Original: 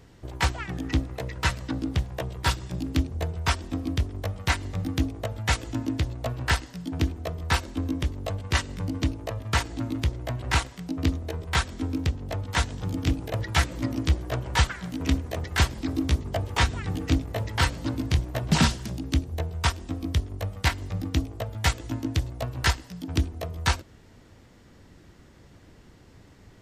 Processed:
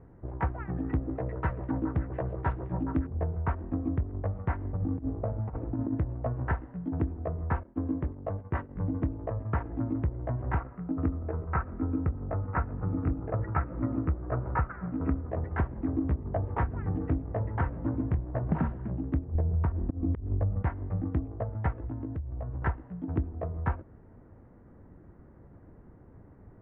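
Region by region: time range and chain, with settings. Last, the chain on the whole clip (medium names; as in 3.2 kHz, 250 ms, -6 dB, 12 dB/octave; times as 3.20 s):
0.75–3.07 s: treble shelf 3.5 kHz +9 dB + repeats whose band climbs or falls 140 ms, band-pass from 390 Hz, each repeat 0.7 oct, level -3.5 dB
4.72–5.95 s: median filter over 25 samples + doubling 42 ms -13.5 dB + compressor with a negative ratio -29 dBFS, ratio -0.5
7.63–8.76 s: expander -31 dBFS + bass shelf 64 Hz -11.5 dB
10.60–15.30 s: brick-wall FIR low-pass 2.9 kHz + peaking EQ 1.3 kHz +9.5 dB 0.26 oct
19.35–20.63 s: bass shelf 420 Hz +11.5 dB + compression 3:1, threshold -19 dBFS + slow attack 212 ms
21.78–22.62 s: peaking EQ 73 Hz +13 dB 0.59 oct + compression 10:1, threshold -31 dBFS
whole clip: Bessel low-pass 1 kHz, order 6; compression, threshold -24 dBFS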